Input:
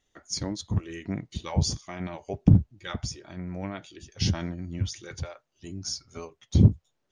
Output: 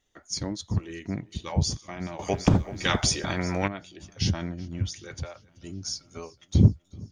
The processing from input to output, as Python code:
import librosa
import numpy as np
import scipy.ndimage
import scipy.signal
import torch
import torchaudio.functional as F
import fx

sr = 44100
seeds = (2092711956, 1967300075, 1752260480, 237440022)

y = fx.echo_feedback(x, sr, ms=381, feedback_pct=59, wet_db=-24.0)
y = fx.spectral_comp(y, sr, ratio=2.0, at=(2.19, 3.68))